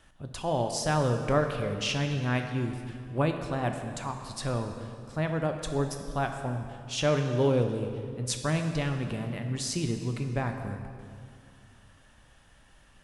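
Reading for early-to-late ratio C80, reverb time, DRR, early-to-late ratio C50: 7.5 dB, 2.4 s, 5.0 dB, 6.5 dB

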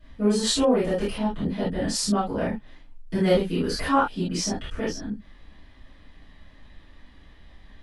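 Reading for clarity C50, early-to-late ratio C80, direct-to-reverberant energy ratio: 2.5 dB, 13.5 dB, -15.0 dB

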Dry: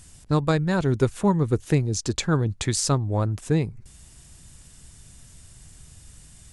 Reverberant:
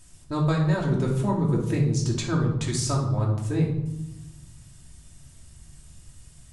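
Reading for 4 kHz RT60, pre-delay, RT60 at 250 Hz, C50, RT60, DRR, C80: 0.60 s, 3 ms, 1.6 s, 4.5 dB, 0.95 s, -3.0 dB, 8.0 dB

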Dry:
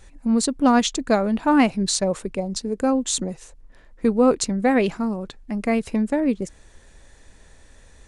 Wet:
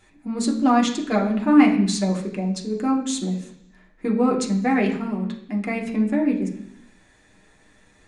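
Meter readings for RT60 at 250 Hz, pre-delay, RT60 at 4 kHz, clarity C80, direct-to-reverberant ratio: 0.90 s, 3 ms, 0.95 s, 11.5 dB, -1.5 dB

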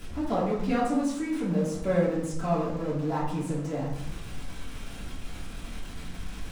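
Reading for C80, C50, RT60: 6.5 dB, 3.5 dB, 0.75 s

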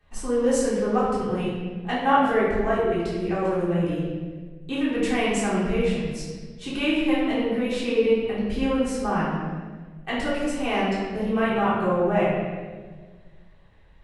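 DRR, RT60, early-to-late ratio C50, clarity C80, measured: -10.0 dB, 1.5 s, -1.0 dB, 1.5 dB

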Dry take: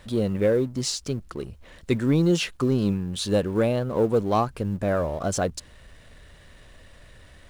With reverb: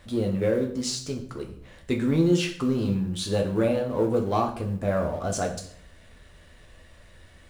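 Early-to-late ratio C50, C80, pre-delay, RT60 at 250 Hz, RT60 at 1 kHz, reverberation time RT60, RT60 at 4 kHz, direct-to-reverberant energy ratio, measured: 9.5 dB, 12.5 dB, 5 ms, 0.65 s, 0.55 s, 0.60 s, 0.50 s, 1.5 dB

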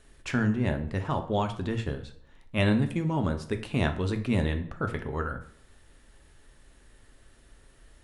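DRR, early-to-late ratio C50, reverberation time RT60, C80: 6.0 dB, 12.0 dB, 0.65 s, 15.0 dB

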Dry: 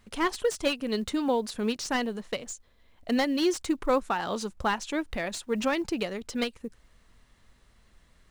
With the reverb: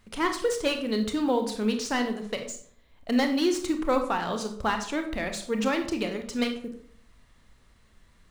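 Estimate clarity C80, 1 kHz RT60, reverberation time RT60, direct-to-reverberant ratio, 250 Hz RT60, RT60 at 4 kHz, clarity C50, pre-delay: 12.5 dB, 0.50 s, 0.55 s, 5.0 dB, 0.65 s, 0.40 s, 9.0 dB, 25 ms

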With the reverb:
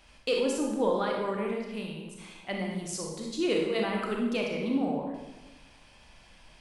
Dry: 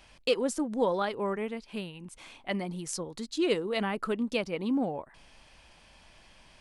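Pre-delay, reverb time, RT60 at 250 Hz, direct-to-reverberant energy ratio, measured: 28 ms, 1.1 s, 1.4 s, -0.5 dB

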